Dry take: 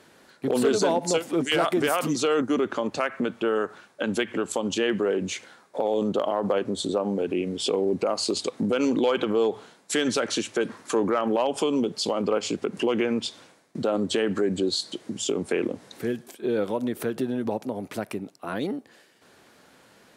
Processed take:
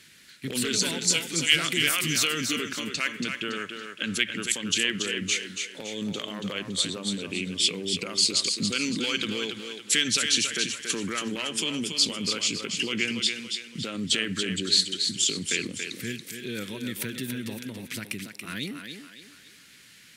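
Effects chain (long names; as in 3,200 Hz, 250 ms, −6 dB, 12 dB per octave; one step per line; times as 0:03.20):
drawn EQ curve 160 Hz 0 dB, 770 Hz −21 dB, 2,100 Hz +7 dB
on a send: feedback echo with a high-pass in the loop 281 ms, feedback 41%, high-pass 230 Hz, level −6 dB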